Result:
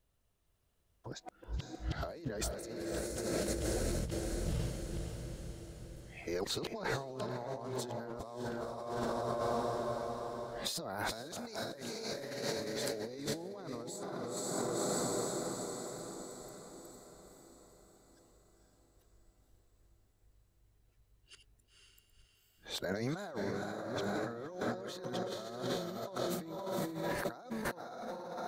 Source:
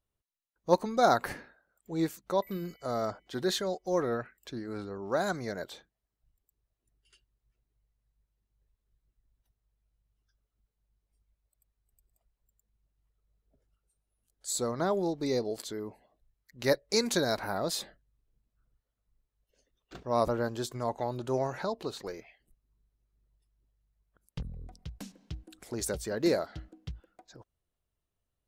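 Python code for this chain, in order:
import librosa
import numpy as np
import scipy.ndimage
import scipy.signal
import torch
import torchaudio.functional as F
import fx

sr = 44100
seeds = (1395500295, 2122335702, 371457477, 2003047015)

y = np.flip(x).copy()
y = fx.echo_diffused(y, sr, ms=501, feedback_pct=53, wet_db=-3)
y = fx.over_compress(y, sr, threshold_db=-40.0, ratio=-1.0)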